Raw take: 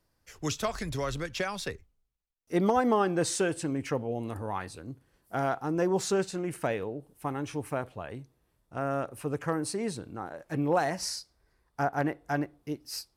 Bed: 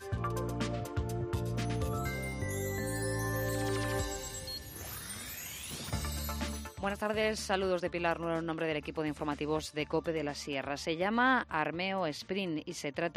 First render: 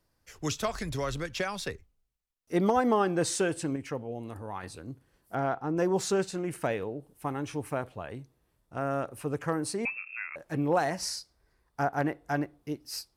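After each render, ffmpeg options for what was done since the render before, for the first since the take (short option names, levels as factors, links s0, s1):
-filter_complex "[0:a]asettb=1/sr,asplit=3[s0][s1][s2];[s0]atrim=end=5.354[s3];[s1]atrim=start=5.35:end=5.77,asetpts=PTS-STARTPTS,afade=t=in:d=0.004:c=qsin,afade=t=out:st=0.416:d=0.004:c=qsin,aemphasis=mode=reproduction:type=75kf[s4];[s2]atrim=start=5.766[s5];[s3][s4]acrossfade=d=0.004:c1=hsin:c2=qsin[s6];[s6][s5]acrossfade=d=0.004:c1=qsin:c2=hsin,asettb=1/sr,asplit=3[s7][s8][s9];[s7]atrim=end=9.854[s10];[s8]atrim=start=9.85:end=10.36,asetpts=PTS-STARTPTS,afade=t=in:d=0.004:c=qsin,afade=t=out:st=0.506:d=0.004:c=qsin,lowpass=f=2400:t=q:w=0.5098,lowpass=f=2400:t=q:w=0.6013,lowpass=f=2400:t=q:w=0.9,lowpass=f=2400:t=q:w=2.563,afreqshift=-2800[s11];[s9]atrim=start=10.356[s12];[s10][s11]acrossfade=d=0.004:c1=hsin:c2=qsin[s13];[s13][s12]acrossfade=d=0.004:c1=qsin:c2=hsin,asplit=3[s14][s15][s16];[s14]atrim=end=3.762[s17];[s15]atrim=start=3.758:end=4.632,asetpts=PTS-STARTPTS,volume=0.596[s18];[s16]atrim=start=4.628[s19];[s17][s18]acrossfade=d=0.004:c1=hsin:c2=hsin[s20];[s20][s19]acrossfade=d=0.004:c1=hsin:c2=hsin"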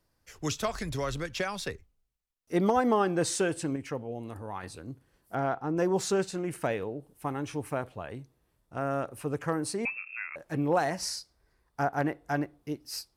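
-af anull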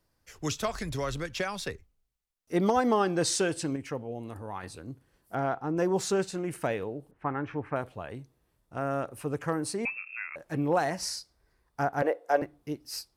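-filter_complex "[0:a]asettb=1/sr,asplit=3[s0][s1][s2];[s0]atrim=end=2.624[s3];[s1]atrim=start=2.62:end=3.77,asetpts=PTS-STARTPTS,afade=t=in:d=0.004:c=qsin,afade=t=out:st=1.146:d=0.004:c=qsin,equalizer=f=4800:t=o:w=1:g=6[s4];[s2]atrim=start=3.766[s5];[s3][s4]acrossfade=d=0.004:c1=hsin:c2=qsin[s6];[s6][s5]acrossfade=d=0.004:c1=qsin:c2=hsin,asettb=1/sr,asplit=3[s7][s8][s9];[s7]atrim=end=7.114[s10];[s8]atrim=start=7.11:end=7.76,asetpts=PTS-STARTPTS,afade=t=in:d=0.004:c=qsin,afade=t=out:st=0.646:d=0.004:c=qsin,lowpass=f=1700:t=q:w=2[s11];[s9]atrim=start=7.756[s12];[s10][s11]acrossfade=d=0.004:c1=hsin:c2=qsin[s13];[s13][s12]acrossfade=d=0.004:c1=qsin:c2=hsin,asettb=1/sr,asplit=3[s14][s15][s16];[s14]atrim=end=12.024[s17];[s15]atrim=start=12.02:end=12.42,asetpts=PTS-STARTPTS,afade=t=in:d=0.004:c=qsin,afade=t=out:st=0.396:d=0.004:c=qsin,highpass=f=510:t=q:w=6.1[s18];[s16]atrim=start=12.416[s19];[s17][s18]acrossfade=d=0.004:c1=hsin:c2=qsin[s20];[s20][s19]acrossfade=d=0.004:c1=qsin:c2=hsin"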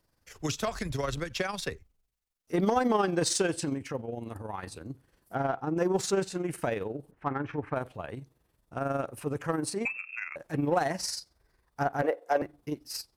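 -filter_complex "[0:a]tremolo=f=22:d=0.571,asplit=2[s0][s1];[s1]asoftclip=type=tanh:threshold=0.0355,volume=0.473[s2];[s0][s2]amix=inputs=2:normalize=0"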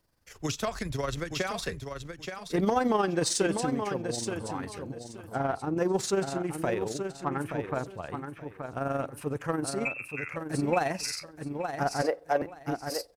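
-af "aecho=1:1:876|1752|2628:0.447|0.0938|0.0197"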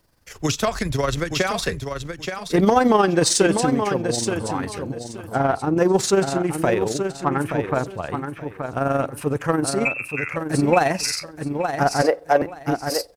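-af "volume=2.99"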